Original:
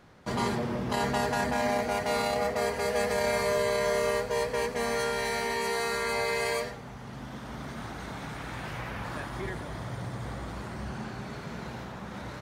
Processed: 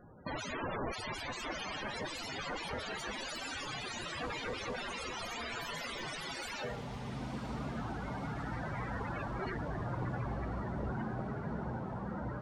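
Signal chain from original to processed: integer overflow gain 29.5 dB; loudest bins only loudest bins 32; echo that smears into a reverb 1039 ms, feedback 64%, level -13 dB; trim +1 dB

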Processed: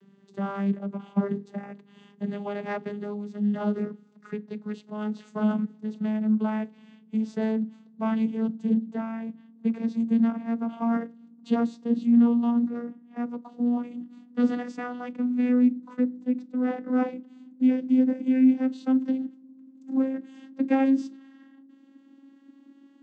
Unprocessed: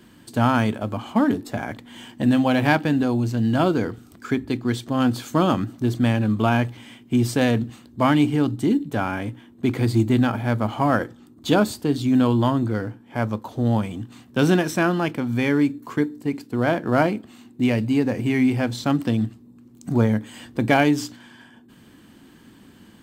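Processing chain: vocoder on a note that slides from G3, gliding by +6 st; trim -4 dB

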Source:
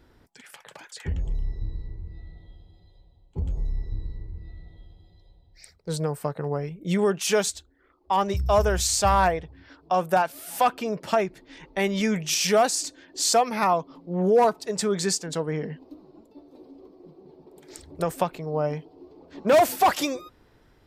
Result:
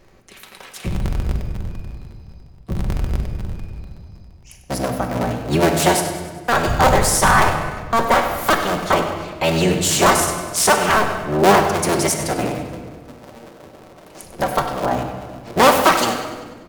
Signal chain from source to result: cycle switcher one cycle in 3, inverted; tape speed +25%; feedback delay 98 ms, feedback 55%, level -12.5 dB; simulated room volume 1400 m³, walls mixed, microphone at 1.1 m; trim +5 dB

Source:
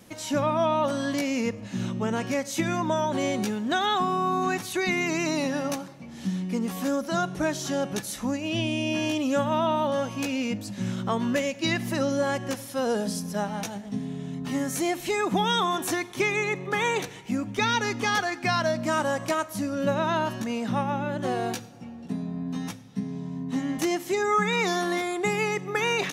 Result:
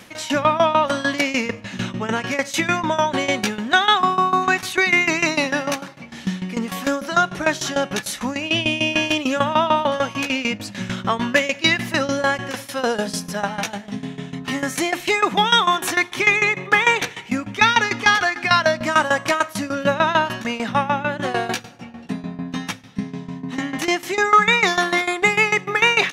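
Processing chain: peaking EQ 2.1 kHz +11 dB 2.7 oct; in parallel at -10 dB: saturation -16.5 dBFS, distortion -13 dB; on the sum: tremolo saw down 6.7 Hz, depth 85%; trim +3.5 dB

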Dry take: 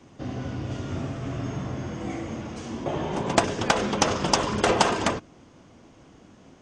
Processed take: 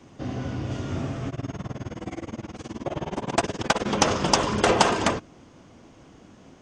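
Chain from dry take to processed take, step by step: 1.29–3.86 s: tremolo 19 Hz, depth 96%; trim +1.5 dB

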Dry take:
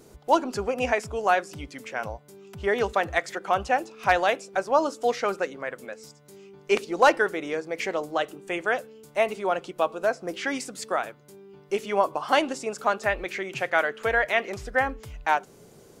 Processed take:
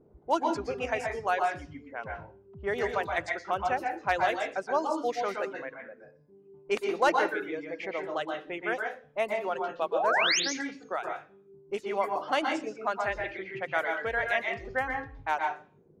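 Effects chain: level-controlled noise filter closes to 640 Hz, open at -20.5 dBFS; reverb removal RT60 1.3 s; painted sound rise, 9.92–10.40 s, 420–7100 Hz -21 dBFS; on a send: reverberation RT60 0.40 s, pre-delay 114 ms, DRR 1.5 dB; on the sum: trim -6.5 dB

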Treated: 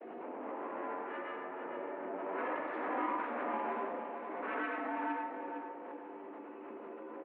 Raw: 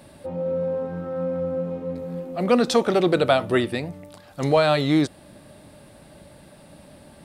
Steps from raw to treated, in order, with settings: pitch bend over the whole clip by +7.5 st starting unshifted; tilt EQ -4 dB/octave; comb 2.8 ms, depth 56%; compression 3:1, threshold -26 dBFS, peak gain reduction 12.5 dB; peak limiter -22 dBFS, peak gain reduction 8 dB; granulator, pitch spread up and down by 0 st; chord resonator D#3 sus4, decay 0.3 s; full-wave rectifier; feedback delay 456 ms, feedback 26%, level -7 dB; on a send at -3 dB: reverberation RT60 0.55 s, pre-delay 77 ms; on the sum: mistuned SSB +79 Hz 170–2500 Hz; swell ahead of each attack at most 20 dB/s; trim +11.5 dB

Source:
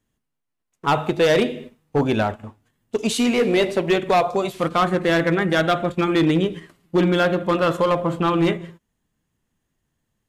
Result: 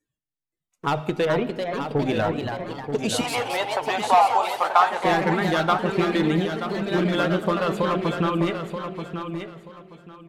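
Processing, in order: 1.25–2.05 s: distance through air 370 m; reverb removal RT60 0.5 s; compression, threshold -20 dBFS, peak gain reduction 6.5 dB; spectral noise reduction 16 dB; simulated room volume 2900 m³, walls mixed, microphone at 0.48 m; ever faster or slower copies 522 ms, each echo +2 st, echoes 2, each echo -6 dB; 3.21–5.04 s: resonant high-pass 850 Hz, resonance Q 4.9; feedback delay 931 ms, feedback 23%, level -8 dB

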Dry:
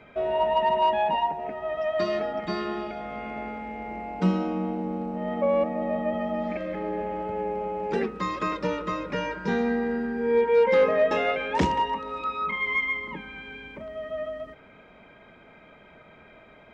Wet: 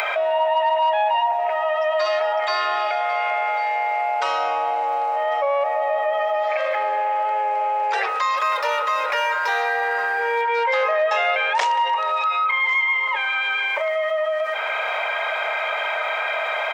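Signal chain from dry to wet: 8.37–10.42 s: median filter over 5 samples; steep high-pass 630 Hz 36 dB/octave; upward compressor, threshold -30 dBFS; delay 1097 ms -20 dB; level flattener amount 70%; trim +2 dB

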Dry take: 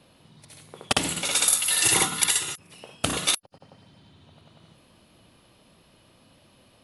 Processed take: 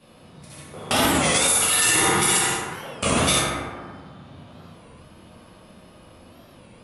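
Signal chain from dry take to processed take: peaking EQ 4 kHz -5 dB 0.25 oct; filtered feedback delay 60 ms, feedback 69%, low-pass 4.7 kHz, level -8.5 dB; plate-style reverb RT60 1.7 s, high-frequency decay 0.3×, DRR -9.5 dB; loudness maximiser +6.5 dB; warped record 33 1/3 rpm, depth 160 cents; trim -8 dB

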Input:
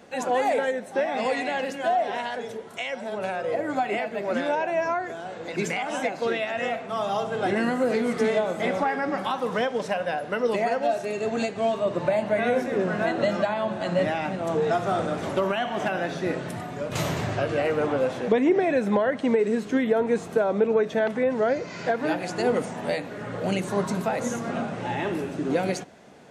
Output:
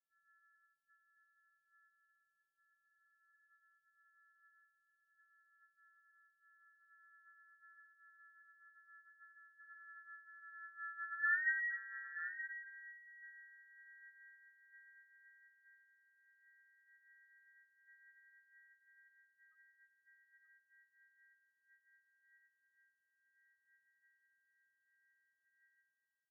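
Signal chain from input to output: sorted samples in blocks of 128 samples; Doppler pass-by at 11.38 s, 24 m/s, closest 2.3 m; steep high-pass 1.2 kHz 96 dB/octave; frequency inversion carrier 3.2 kHz; loudest bins only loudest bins 2; delay 927 ms -11 dB; trim +7.5 dB

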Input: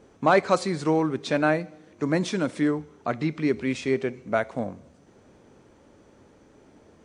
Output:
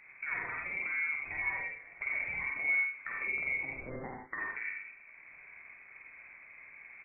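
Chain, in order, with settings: tracing distortion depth 0.085 ms; 3.70–4.39 s: high-pass 1.2 kHz -> 540 Hz 24 dB/octave; in parallel at 0 dB: level held to a coarse grid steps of 14 dB; on the sum: peak limiter -15.5 dBFS, peak gain reduction 9.5 dB; compression, threshold -30 dBFS, peak gain reduction 10 dB; on a send: multi-tap echo 50/87 ms -3.5/-6 dB; on the sum: gated-style reverb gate 110 ms rising, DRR 2 dB; frequency inversion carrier 2.5 kHz; trim -8.5 dB

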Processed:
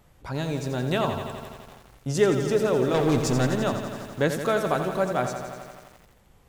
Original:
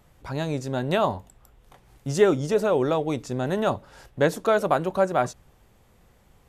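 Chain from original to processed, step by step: dynamic bell 760 Hz, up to -5 dB, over -32 dBFS, Q 0.76; 2.94–3.47 s: waveshaping leveller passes 3; bit-crushed delay 85 ms, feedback 80%, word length 8-bit, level -8.5 dB

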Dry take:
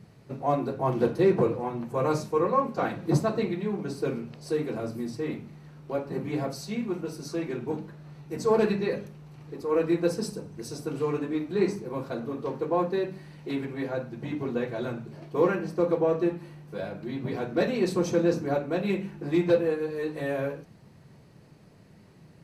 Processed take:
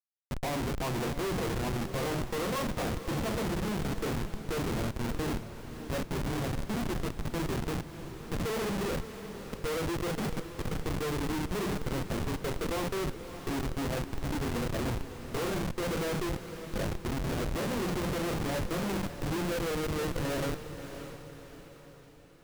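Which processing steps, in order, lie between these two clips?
Schmitt trigger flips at -31 dBFS; echo that smears into a reverb 592 ms, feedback 48%, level -10.5 dB; trim -3 dB

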